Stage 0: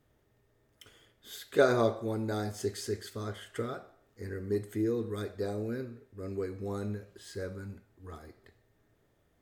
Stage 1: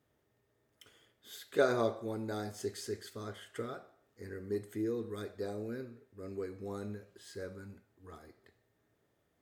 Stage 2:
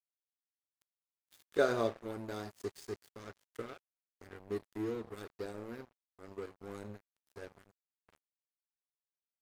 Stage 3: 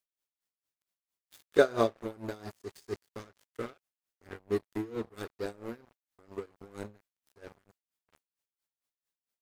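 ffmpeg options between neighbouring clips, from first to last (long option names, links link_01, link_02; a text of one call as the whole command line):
ffmpeg -i in.wav -af "highpass=frequency=130:poles=1,volume=-4dB" out.wav
ffmpeg -i in.wav -af "aeval=exprs='sgn(val(0))*max(abs(val(0))-0.00631,0)':channel_layout=same" out.wav
ffmpeg -i in.wav -af "aeval=exprs='val(0)*pow(10,-20*(0.5-0.5*cos(2*PI*4.4*n/s))/20)':channel_layout=same,volume=8.5dB" out.wav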